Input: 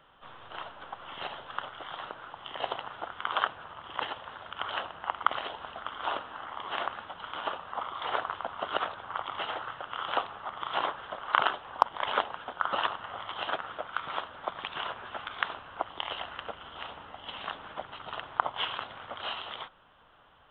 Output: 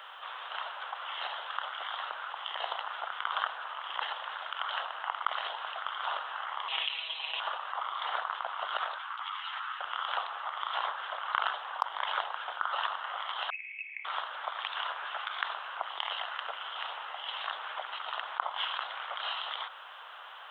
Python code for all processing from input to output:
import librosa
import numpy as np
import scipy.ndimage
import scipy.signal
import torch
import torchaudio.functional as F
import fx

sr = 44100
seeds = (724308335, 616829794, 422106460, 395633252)

y = fx.chain(x, sr, fx.freq_invert(carrier_hz=4000),
    fx.low_shelf(hz=440.0, db=9.5),
    fx.comb(ms=6.2, depth=0.75), at=(6.68, 7.4))
y = fx.chain(y, sr, fx.highpass(hz=980.0, slope=24),
    fx.over_compress(threshold_db=-39.0, ratio=-0.5),
    fx.ensemble(), at=(8.98, 9.8))
y = fx.chain(y, sr, fx.formant_cascade(vowel='a'),
    fx.freq_invert(carrier_hz=3300), at=(13.5, 14.05))
y = scipy.signal.sosfilt(scipy.signal.bessel(4, 980.0, 'highpass', norm='mag', fs=sr, output='sos'), y)
y = fx.dynamic_eq(y, sr, hz=2500.0, q=2.3, threshold_db=-48.0, ratio=4.0, max_db=-4)
y = fx.env_flatten(y, sr, amount_pct=50)
y = F.gain(torch.from_numpy(y), -4.5).numpy()